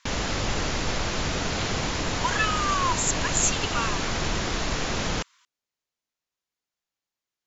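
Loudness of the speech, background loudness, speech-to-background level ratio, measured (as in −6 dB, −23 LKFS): −26.5 LKFS, −27.5 LKFS, 1.0 dB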